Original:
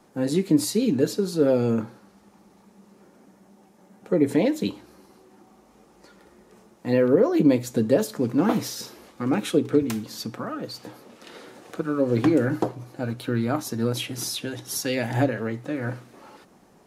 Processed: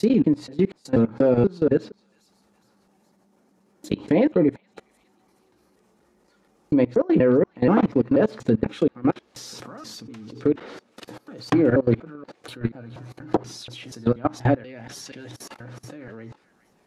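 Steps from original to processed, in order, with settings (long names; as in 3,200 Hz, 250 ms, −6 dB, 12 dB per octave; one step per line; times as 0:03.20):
slices reordered back to front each 240 ms, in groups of 4
delay with a high-pass on its return 415 ms, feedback 39%, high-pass 1,700 Hz, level −15 dB
treble cut that deepens with the level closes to 2,400 Hz, closed at −20.5 dBFS
output level in coarse steps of 23 dB
level +6.5 dB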